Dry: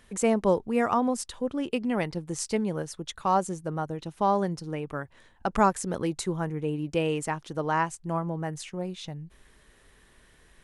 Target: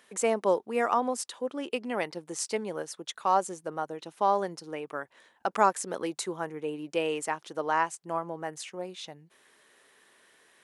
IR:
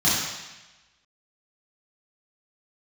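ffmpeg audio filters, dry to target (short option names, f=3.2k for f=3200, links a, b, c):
-af "highpass=380"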